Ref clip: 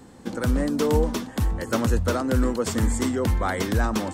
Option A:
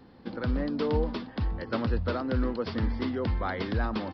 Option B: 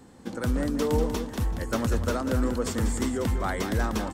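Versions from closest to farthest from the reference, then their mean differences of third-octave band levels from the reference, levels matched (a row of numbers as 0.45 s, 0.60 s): B, A; 2.0 dB, 5.0 dB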